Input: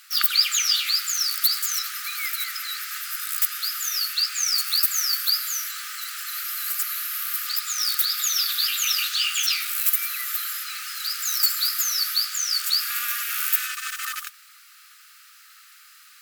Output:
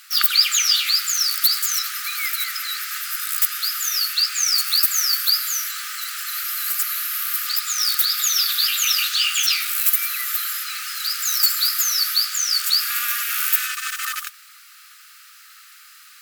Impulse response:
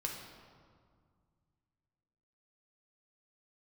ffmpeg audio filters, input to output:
-filter_complex "[0:a]asettb=1/sr,asplit=3[link_01][link_02][link_03];[link_01]atrim=end=0.564[link_04];[link_02]atrim=start=0.56:end=2.07,asetpts=PTS-STARTPTS,afade=type=in:duration=0.004:curve=qsin,afade=type=out:start_time=1.506:duration=0.004:curve=qsin,lowshelf=frequency=190:width_type=q:width=3:gain=9[link_05];[link_03]atrim=start=2.066[link_06];[link_04][link_05]acrossfade=duration=0.004:curve1=hsin:curve2=qsin[link_07];[link_07][link_06]acrossfade=duration=0.004:curve1=qsin:curve2=hsin,acontrast=23,volume=-1dB"

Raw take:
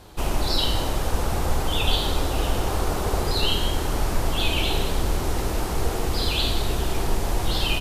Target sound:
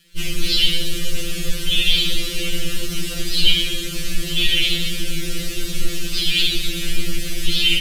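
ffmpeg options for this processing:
ffmpeg -i in.wav -filter_complex "[0:a]aeval=exprs='sgn(val(0))*max(abs(val(0))-0.00668,0)':channel_layout=same,asuperstop=centerf=870:order=4:qfactor=0.7,bass=frequency=250:gain=4,treble=frequency=4000:gain=6,acontrast=62,asplit=3[link_01][link_02][link_03];[link_02]asetrate=33038,aresample=44100,atempo=1.33484,volume=-10dB[link_04];[link_03]asetrate=52444,aresample=44100,atempo=0.840896,volume=-15dB[link_05];[link_01][link_04][link_05]amix=inputs=3:normalize=0,equalizer=frequency=2900:width=1.1:gain=10.5,afftfilt=real='re*2.83*eq(mod(b,8),0)':imag='im*2.83*eq(mod(b,8),0)':win_size=2048:overlap=0.75,volume=-5dB" out.wav

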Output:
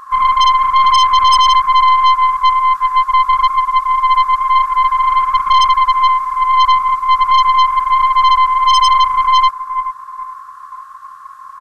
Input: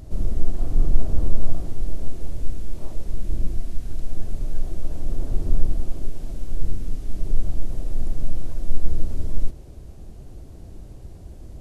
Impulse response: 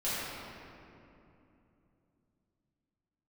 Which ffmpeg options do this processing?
-filter_complex "[0:a]afftfilt=real='real(if(lt(b,960),b+48*(1-2*mod(floor(b/48),2)),b),0)':imag='imag(if(lt(b,960),b+48*(1-2*mod(floor(b/48),2)),b),0)':win_size=2048:overlap=0.75,afftfilt=real='re*(1-between(b*sr/4096,220,650))':imag='im*(1-between(b*sr/4096,220,650))':win_size=4096:overlap=0.75,asplit=2[link_01][link_02];[link_02]aecho=0:1:428|856|1284:0.224|0.0784|0.0274[link_03];[link_01][link_03]amix=inputs=2:normalize=0,aeval=exprs='1.26*(cos(1*acos(clip(val(0)/1.26,-1,1)))-cos(1*PI/2))+0.501*(cos(5*acos(clip(val(0)/1.26,-1,1)))-cos(5*PI/2))+0.158*(cos(8*acos(clip(val(0)/1.26,-1,1)))-cos(8*PI/2))':channel_layout=same,volume=-6dB"

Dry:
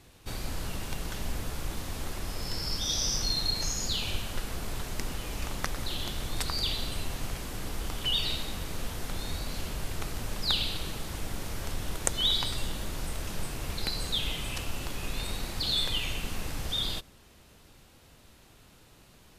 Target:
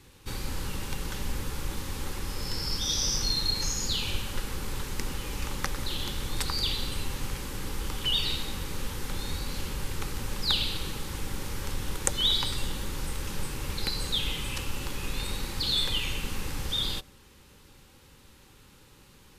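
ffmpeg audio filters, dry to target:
ffmpeg -i in.wav -af "asuperstop=centerf=670:order=20:qfactor=4.3,volume=1.5dB" out.wav

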